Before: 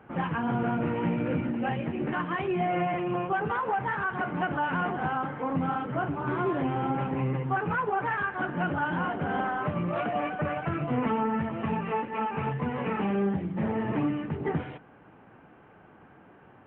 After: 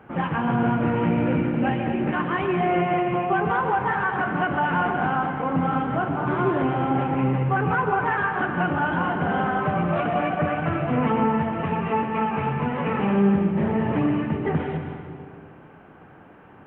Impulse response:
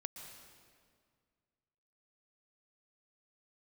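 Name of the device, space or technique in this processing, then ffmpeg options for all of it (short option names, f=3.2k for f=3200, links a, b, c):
stairwell: -filter_complex "[1:a]atrim=start_sample=2205[a];[0:a][a]afir=irnorm=-1:irlink=0,volume=8.5dB"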